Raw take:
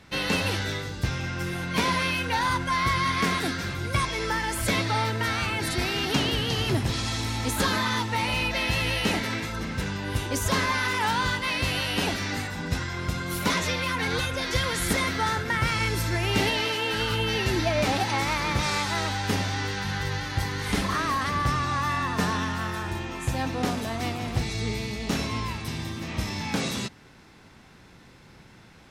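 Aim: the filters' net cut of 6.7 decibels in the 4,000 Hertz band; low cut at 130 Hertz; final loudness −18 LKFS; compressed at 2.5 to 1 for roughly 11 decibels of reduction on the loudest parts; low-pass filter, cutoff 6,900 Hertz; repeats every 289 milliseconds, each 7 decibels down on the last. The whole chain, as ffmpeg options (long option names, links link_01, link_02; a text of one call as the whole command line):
ffmpeg -i in.wav -af "highpass=130,lowpass=6900,equalizer=frequency=4000:width_type=o:gain=-8.5,acompressor=threshold=-39dB:ratio=2.5,aecho=1:1:289|578|867|1156|1445:0.447|0.201|0.0905|0.0407|0.0183,volume=18.5dB" out.wav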